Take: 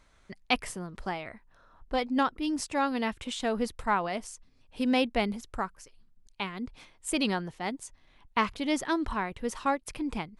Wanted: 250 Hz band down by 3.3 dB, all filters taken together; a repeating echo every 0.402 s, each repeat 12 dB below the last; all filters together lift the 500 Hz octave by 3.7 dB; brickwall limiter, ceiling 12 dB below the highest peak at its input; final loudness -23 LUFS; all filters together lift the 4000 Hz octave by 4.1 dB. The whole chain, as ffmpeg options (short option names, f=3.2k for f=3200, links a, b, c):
-af "equalizer=f=250:t=o:g=-5.5,equalizer=f=500:t=o:g=5.5,equalizer=f=4k:t=o:g=5.5,alimiter=limit=-19dB:level=0:latency=1,aecho=1:1:402|804|1206:0.251|0.0628|0.0157,volume=9.5dB"